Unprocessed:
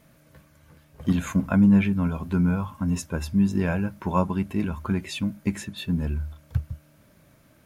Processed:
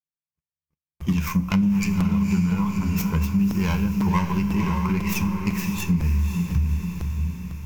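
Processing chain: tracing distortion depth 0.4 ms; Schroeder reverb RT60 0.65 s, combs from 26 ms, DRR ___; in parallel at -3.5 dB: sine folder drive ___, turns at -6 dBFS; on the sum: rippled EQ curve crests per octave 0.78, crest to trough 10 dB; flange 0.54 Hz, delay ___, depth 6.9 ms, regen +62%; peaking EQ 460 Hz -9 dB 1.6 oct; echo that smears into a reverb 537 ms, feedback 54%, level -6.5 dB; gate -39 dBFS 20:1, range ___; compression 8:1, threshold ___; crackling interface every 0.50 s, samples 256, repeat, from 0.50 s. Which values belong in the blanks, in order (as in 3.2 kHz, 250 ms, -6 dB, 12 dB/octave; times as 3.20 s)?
13.5 dB, 4 dB, 8.4 ms, -55 dB, -17 dBFS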